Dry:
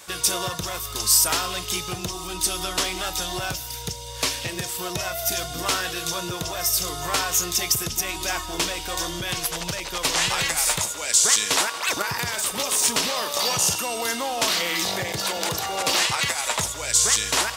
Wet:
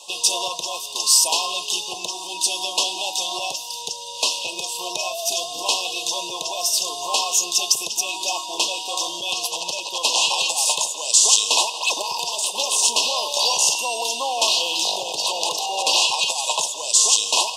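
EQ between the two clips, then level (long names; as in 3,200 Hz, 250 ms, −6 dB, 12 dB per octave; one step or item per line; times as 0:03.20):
band-pass filter 640–7,600 Hz
linear-phase brick-wall band-stop 1,100–2,500 Hz
+5.5 dB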